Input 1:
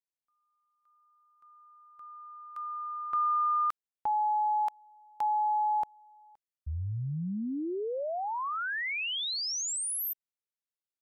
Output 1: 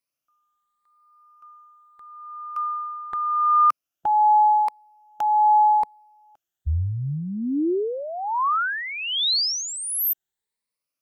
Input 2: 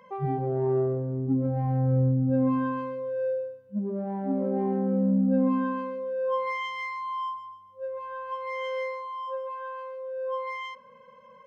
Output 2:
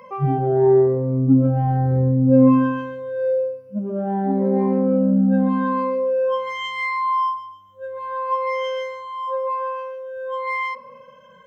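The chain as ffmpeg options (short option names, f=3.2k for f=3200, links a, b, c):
-af "afftfilt=real='re*pow(10,11/40*sin(2*PI*(0.93*log(max(b,1)*sr/1024/100)/log(2)-(0.83)*(pts-256)/sr)))':imag='im*pow(10,11/40*sin(2*PI*(0.93*log(max(b,1)*sr/1024/100)/log(2)-(0.83)*(pts-256)/sr)))':win_size=1024:overlap=0.75,volume=7dB"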